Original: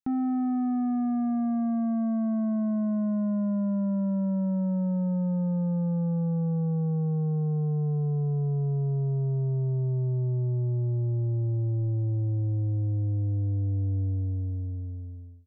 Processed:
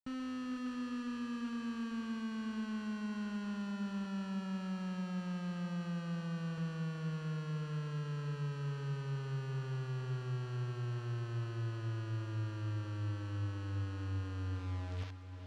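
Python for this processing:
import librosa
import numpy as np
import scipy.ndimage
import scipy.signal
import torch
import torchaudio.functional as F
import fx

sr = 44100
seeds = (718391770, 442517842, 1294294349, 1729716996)

y = fx.delta_mod(x, sr, bps=16000, step_db=-51.0)
y = fx.highpass(y, sr, hz=67.0, slope=6, at=(4.05, 6.58))
y = fx.quant_dither(y, sr, seeds[0], bits=6, dither='none')
y = fx.tube_stage(y, sr, drive_db=38.0, bias=0.25)
y = fx.air_absorb(y, sr, metres=110.0)
y = fx.echo_diffused(y, sr, ms=467, feedback_pct=45, wet_db=-9.0)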